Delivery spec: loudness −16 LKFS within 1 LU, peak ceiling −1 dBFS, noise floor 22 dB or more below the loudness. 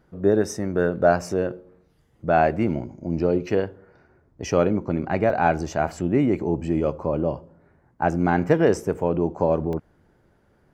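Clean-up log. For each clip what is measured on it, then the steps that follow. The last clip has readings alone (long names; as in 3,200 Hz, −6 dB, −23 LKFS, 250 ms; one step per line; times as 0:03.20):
number of dropouts 3; longest dropout 1.6 ms; integrated loudness −23.0 LKFS; sample peak −5.0 dBFS; target loudness −16.0 LKFS
→ repair the gap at 0:03.62/0:05.30/0:09.73, 1.6 ms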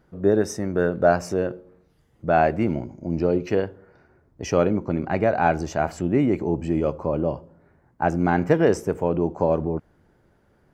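number of dropouts 0; integrated loudness −23.0 LKFS; sample peak −5.0 dBFS; target loudness −16.0 LKFS
→ level +7 dB
brickwall limiter −1 dBFS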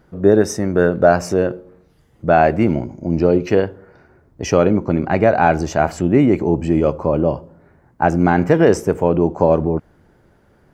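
integrated loudness −16.5 LKFS; sample peak −1.0 dBFS; background noise floor −55 dBFS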